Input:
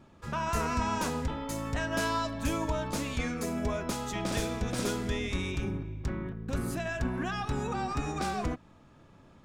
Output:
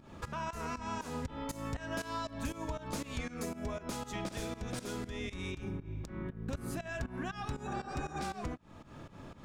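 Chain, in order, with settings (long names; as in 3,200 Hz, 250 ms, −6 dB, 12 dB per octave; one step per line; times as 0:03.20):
downward compressor 4 to 1, threshold −46 dBFS, peak gain reduction 17.5 dB
healed spectral selection 0:07.69–0:08.19, 310–1,800 Hz after
fake sidechain pumping 119 BPM, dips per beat 2, −17 dB, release 184 ms
level +8.5 dB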